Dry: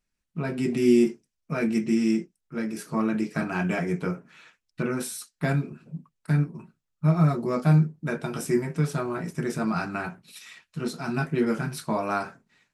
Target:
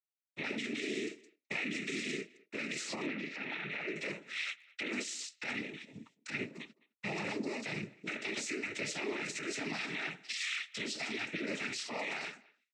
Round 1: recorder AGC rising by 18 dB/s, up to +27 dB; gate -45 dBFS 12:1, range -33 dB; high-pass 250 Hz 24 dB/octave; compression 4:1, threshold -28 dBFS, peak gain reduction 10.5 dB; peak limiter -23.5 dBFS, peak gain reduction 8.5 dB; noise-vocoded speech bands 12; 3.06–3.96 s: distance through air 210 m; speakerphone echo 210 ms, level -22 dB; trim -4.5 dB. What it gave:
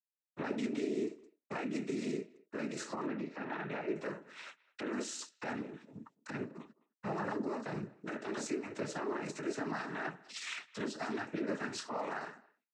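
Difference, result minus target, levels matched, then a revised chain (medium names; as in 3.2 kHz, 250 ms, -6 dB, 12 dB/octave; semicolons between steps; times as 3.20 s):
4 kHz band -6.5 dB
recorder AGC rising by 18 dB/s, up to +27 dB; gate -45 dBFS 12:1, range -33 dB; high-pass 250 Hz 24 dB/octave; compression 4:1, threshold -28 dBFS, peak gain reduction 10.5 dB; resonant high shelf 1.7 kHz +11 dB, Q 3; peak limiter -23.5 dBFS, peak gain reduction 17 dB; noise-vocoded speech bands 12; 3.06–3.96 s: distance through air 210 m; speakerphone echo 210 ms, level -22 dB; trim -4.5 dB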